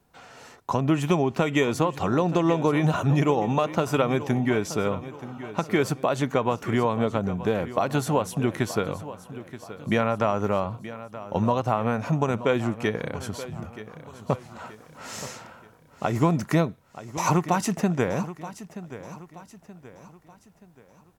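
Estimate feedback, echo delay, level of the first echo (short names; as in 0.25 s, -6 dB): 42%, 0.927 s, -14.5 dB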